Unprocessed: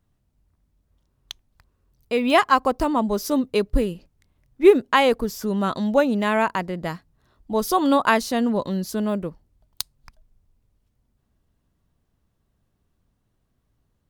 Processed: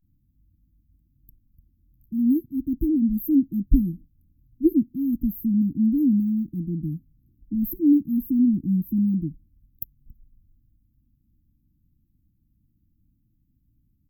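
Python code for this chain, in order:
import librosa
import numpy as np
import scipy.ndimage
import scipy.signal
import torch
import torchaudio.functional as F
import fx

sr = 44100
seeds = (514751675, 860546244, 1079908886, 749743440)

y = fx.vibrato(x, sr, rate_hz=0.4, depth_cents=85.0)
y = fx.brickwall_bandstop(y, sr, low_hz=340.0, high_hz=12000.0)
y = y * 10.0 ** (4.0 / 20.0)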